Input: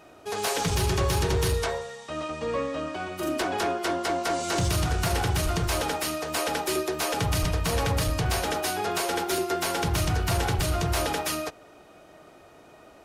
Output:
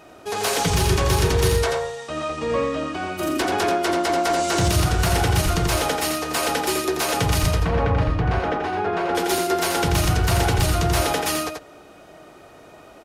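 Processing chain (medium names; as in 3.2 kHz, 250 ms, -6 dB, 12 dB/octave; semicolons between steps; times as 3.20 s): 7.60–9.15 s: low-pass 1.8 kHz 12 dB/octave; on a send: delay 86 ms -5 dB; on the sum: trim +4.5 dB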